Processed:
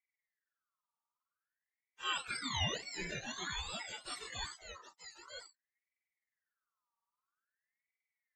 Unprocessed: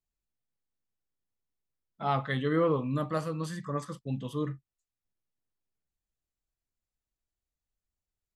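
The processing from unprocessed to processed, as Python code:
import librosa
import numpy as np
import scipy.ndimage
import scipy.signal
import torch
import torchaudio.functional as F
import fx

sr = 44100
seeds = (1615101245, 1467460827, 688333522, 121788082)

y = fx.octave_mirror(x, sr, pivot_hz=900.0)
y = y + 10.0 ** (-6.5 / 20.0) * np.pad(y, (int(947 * sr / 1000.0), 0))[:len(y)]
y = fx.wow_flutter(y, sr, seeds[0], rate_hz=2.1, depth_cents=130.0)
y = fx.cheby_ripple_highpass(y, sr, hz=340.0, ripple_db=3, at=(2.77, 3.27), fade=0.02)
y = fx.ring_lfo(y, sr, carrier_hz=1600.0, swing_pct=35, hz=0.5)
y = y * 10.0 ** (-4.0 / 20.0)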